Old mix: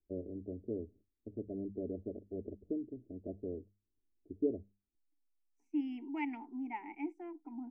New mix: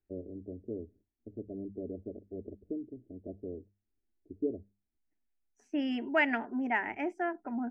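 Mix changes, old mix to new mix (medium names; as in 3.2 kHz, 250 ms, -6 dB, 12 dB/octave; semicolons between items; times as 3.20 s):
second voice: remove vowel filter u; master: add low-pass 3.4 kHz 12 dB/octave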